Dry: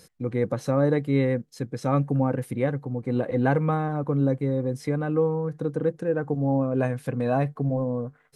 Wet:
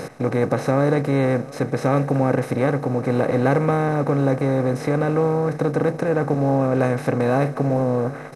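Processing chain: spectral levelling over time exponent 0.4; delay 724 ms -21 dB

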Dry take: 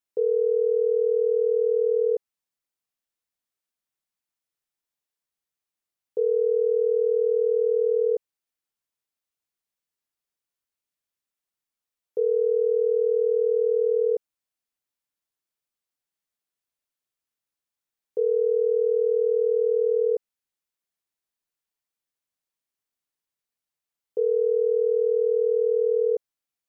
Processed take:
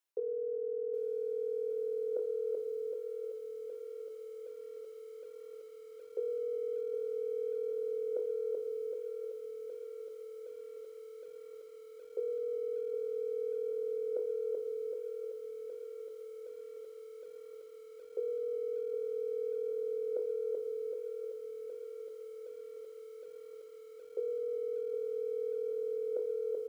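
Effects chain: feedback delay 382 ms, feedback 35%, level -11 dB; peak limiter -19 dBFS, peak gain reduction 4 dB; reverberation RT60 0.40 s, pre-delay 17 ms, DRR 6 dB; reverse; compression 5:1, threshold -35 dBFS, peak gain reduction 12.5 dB; reverse; high-pass 310 Hz 24 dB/octave; doubling 24 ms -7.5 dB; bit-crushed delay 766 ms, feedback 80%, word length 11-bit, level -11.5 dB; trim +4 dB

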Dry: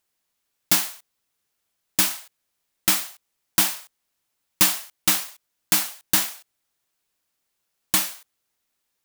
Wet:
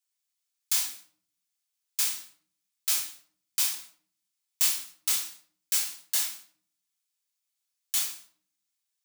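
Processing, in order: median filter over 3 samples; differentiator; simulated room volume 560 m³, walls furnished, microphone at 4.1 m; trim -6.5 dB

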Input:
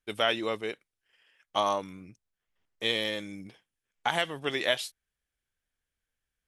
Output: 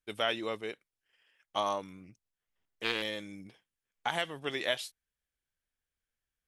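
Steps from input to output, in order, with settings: 2.03–3.02 s: loudspeaker Doppler distortion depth 0.33 ms; trim -4.5 dB

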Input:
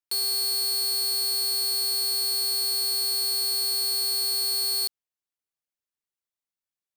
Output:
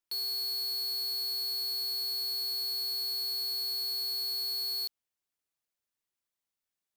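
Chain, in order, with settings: hard clipper -35 dBFS, distortion -7 dB; trim +2 dB

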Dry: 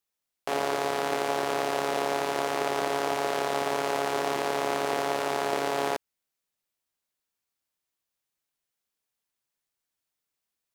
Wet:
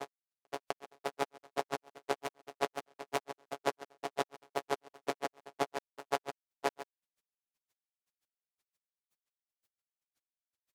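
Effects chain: peak limiter -20 dBFS, peak gain reduction 8 dB; granulator 85 ms, grains 7.7 per s, spray 903 ms, pitch spread up and down by 0 st; logarithmic tremolo 5.7 Hz, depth 38 dB; trim +7 dB

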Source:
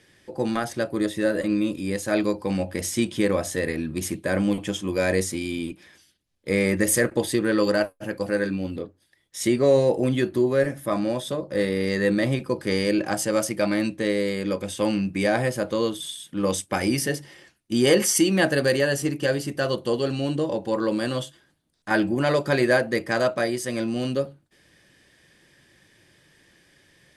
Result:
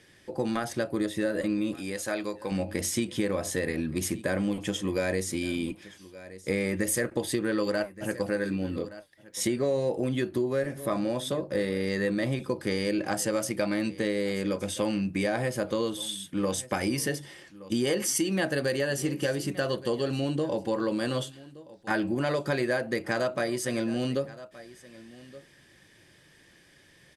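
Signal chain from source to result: delay 1171 ms -22.5 dB; compression 4:1, threshold -25 dBFS, peak gain reduction 10.5 dB; 1.74–2.52 s: bass shelf 340 Hz -10 dB

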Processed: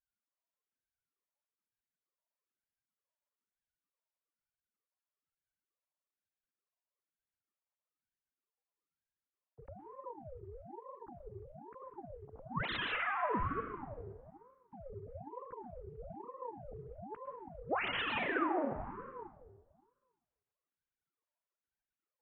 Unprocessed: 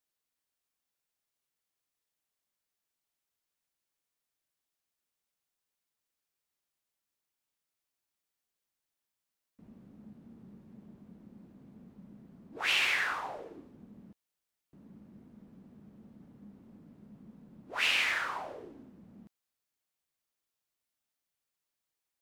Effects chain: formants replaced by sine waves; in parallel at -3 dB: gain riding 2 s; on the sum: band-pass filter 450 Hz, Q 1.1; plate-style reverb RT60 1.5 s, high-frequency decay 0.7×, pre-delay 100 ms, DRR 9 dB; ring modulator with a swept carrier 470 Hz, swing 70%, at 1.1 Hz; trim +4 dB

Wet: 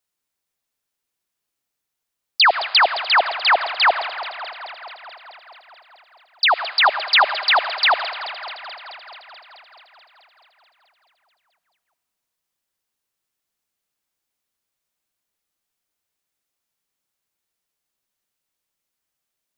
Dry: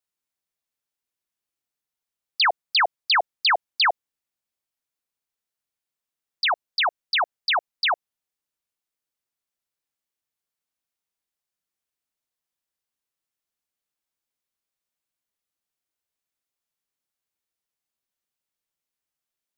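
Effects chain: 2.78–3.88 s: low-pass 2.6 kHz 6 dB/octave; 6.83–7.36 s: comb 5 ms, depth 77%; echo whose repeats swap between lows and highs 108 ms, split 1.9 kHz, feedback 86%, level -12 dB; on a send at -16.5 dB: reverberation RT60 2.3 s, pre-delay 35 ms; on the sum: trim +6 dB

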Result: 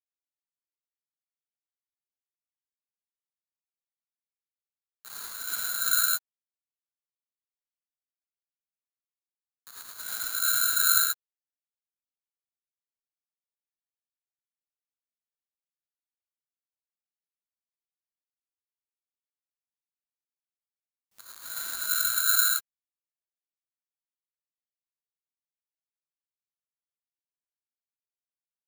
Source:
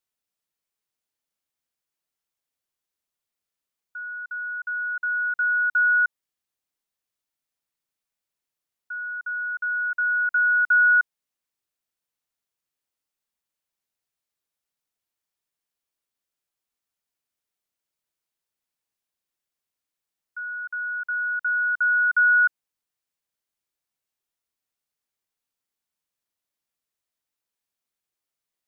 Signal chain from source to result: expander on every frequency bin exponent 3; peaking EQ 1.4 kHz -2.5 dB 0.61 oct; band-stop 1.4 kHz, Q 5.6; peak limiter -29.5 dBFS, peak gain reduction 6 dB; whisper effect; bit crusher 8-bit; gated-style reverb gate 130 ms rising, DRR -6 dB; careless resampling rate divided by 8×, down none, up zero stuff; trim -4.5 dB

